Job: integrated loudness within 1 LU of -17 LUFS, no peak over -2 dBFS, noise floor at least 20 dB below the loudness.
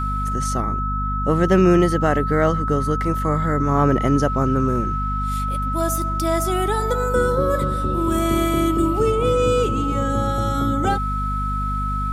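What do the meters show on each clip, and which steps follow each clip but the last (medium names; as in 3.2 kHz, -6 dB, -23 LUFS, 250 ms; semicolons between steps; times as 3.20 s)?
hum 50 Hz; highest harmonic 250 Hz; hum level -22 dBFS; steady tone 1.3 kHz; tone level -24 dBFS; loudness -20.5 LUFS; peak level -2.5 dBFS; loudness target -17.0 LUFS
-> de-hum 50 Hz, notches 5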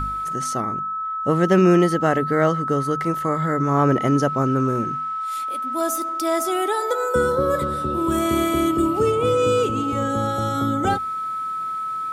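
hum not found; steady tone 1.3 kHz; tone level -24 dBFS
-> band-stop 1.3 kHz, Q 30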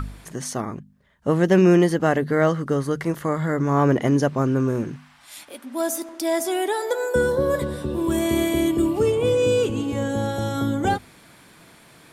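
steady tone not found; loudness -22.0 LUFS; peak level -4.5 dBFS; loudness target -17.0 LUFS
-> trim +5 dB; peak limiter -2 dBFS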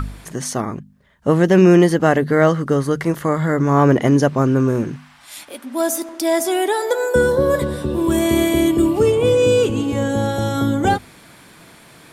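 loudness -17.0 LUFS; peak level -2.0 dBFS; noise floor -46 dBFS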